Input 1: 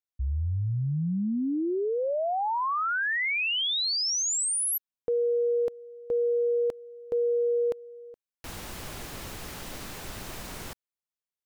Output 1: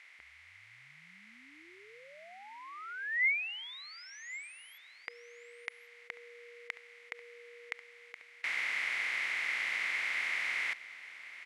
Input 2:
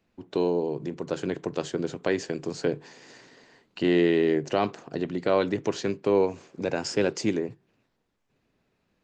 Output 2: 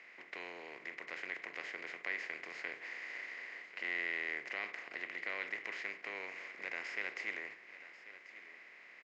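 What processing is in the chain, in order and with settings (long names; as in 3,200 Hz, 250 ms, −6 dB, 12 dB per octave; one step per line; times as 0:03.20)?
compressor on every frequency bin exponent 0.4
resonant band-pass 2,100 Hz, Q 9
single-tap delay 1,090 ms −15.5 dB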